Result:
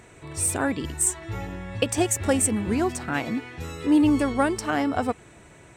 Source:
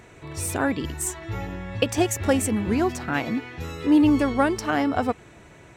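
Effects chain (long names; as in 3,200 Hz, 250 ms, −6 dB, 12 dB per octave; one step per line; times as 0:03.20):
parametric band 8,500 Hz +10 dB 0.36 octaves
level −1.5 dB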